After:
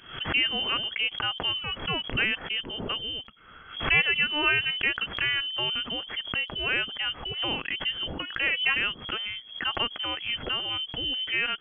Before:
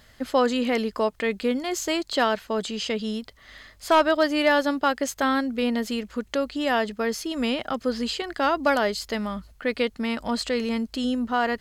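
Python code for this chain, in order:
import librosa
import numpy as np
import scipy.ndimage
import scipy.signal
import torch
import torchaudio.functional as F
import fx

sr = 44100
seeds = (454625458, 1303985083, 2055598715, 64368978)

y = fx.freq_invert(x, sr, carrier_hz=3300)
y = fx.high_shelf(y, sr, hz=2500.0, db=-9.0)
y = fx.pre_swell(y, sr, db_per_s=110.0)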